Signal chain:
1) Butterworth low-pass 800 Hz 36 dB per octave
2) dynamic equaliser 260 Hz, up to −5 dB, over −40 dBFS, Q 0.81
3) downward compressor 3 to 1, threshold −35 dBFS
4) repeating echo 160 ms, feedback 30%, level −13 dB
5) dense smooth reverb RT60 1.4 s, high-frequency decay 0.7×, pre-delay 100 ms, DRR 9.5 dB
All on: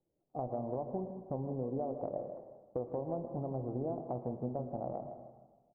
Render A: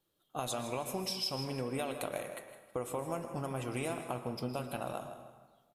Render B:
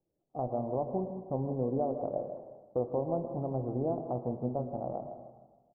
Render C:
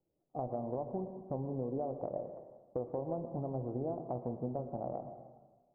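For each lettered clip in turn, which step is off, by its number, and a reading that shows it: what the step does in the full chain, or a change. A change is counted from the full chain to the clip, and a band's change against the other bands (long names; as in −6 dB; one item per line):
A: 1, 1 kHz band +3.5 dB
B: 3, change in momentary loudness spread +1 LU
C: 4, echo-to-direct ratio −7.5 dB to −9.5 dB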